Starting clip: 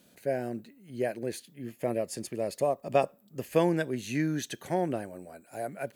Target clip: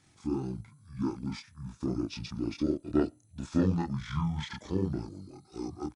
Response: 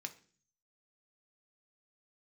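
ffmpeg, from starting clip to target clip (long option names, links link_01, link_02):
-filter_complex "[0:a]asplit=2[link_01][link_02];[link_02]adelay=28,volume=-2.5dB[link_03];[link_01][link_03]amix=inputs=2:normalize=0,asetrate=23361,aresample=44100,atempo=1.88775,volume=-3dB"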